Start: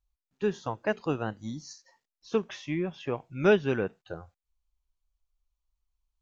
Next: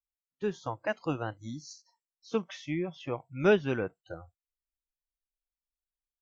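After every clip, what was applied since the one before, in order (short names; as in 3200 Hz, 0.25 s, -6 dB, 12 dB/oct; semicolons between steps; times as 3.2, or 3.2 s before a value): spectral noise reduction 19 dB; AGC gain up to 5 dB; gain -6.5 dB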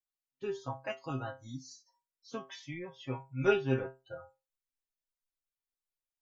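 metallic resonator 130 Hz, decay 0.27 s, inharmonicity 0.002; gain +6.5 dB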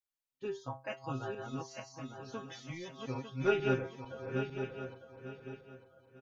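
regenerating reverse delay 0.45 s, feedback 51%, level -3 dB; echo 1.113 s -13.5 dB; gain -2.5 dB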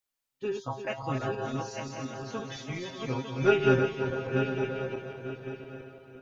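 regenerating reverse delay 0.171 s, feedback 63%, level -7 dB; gain +6.5 dB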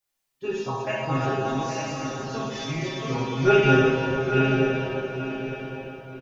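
echo 0.821 s -9.5 dB; reverb, pre-delay 3 ms, DRR -6 dB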